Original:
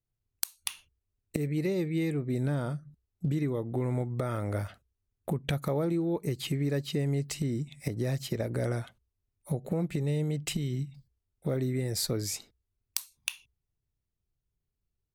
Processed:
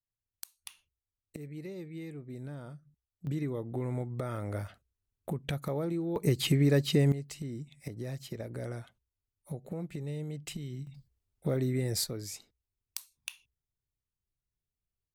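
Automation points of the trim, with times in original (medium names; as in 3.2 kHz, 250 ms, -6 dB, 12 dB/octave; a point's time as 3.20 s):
-12.5 dB
from 3.27 s -4 dB
from 6.16 s +5 dB
from 7.12 s -8 dB
from 10.87 s 0 dB
from 12.04 s -7.5 dB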